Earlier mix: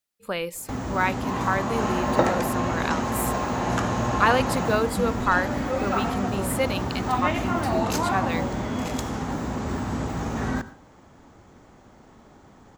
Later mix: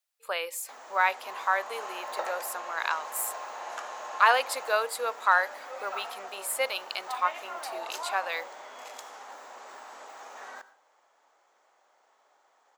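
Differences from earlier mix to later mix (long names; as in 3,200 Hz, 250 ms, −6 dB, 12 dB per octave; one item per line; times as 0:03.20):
background −10.0 dB
master: add high-pass filter 580 Hz 24 dB per octave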